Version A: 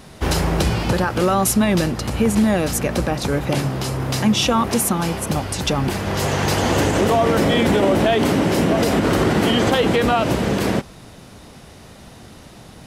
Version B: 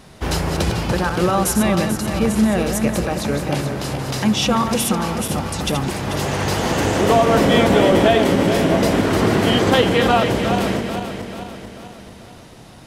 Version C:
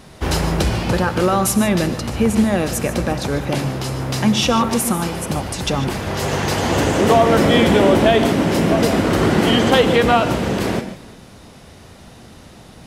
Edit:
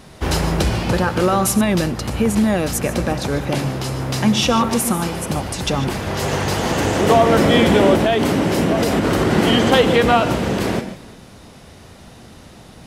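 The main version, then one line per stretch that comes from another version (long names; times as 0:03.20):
C
0:01.61–0:02.83: punch in from A
0:06.39–0:07.07: punch in from B
0:07.96–0:09.32: punch in from A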